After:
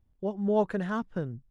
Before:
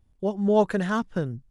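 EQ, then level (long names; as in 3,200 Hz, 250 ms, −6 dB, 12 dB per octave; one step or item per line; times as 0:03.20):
high-shelf EQ 3,800 Hz −10.5 dB
−5.0 dB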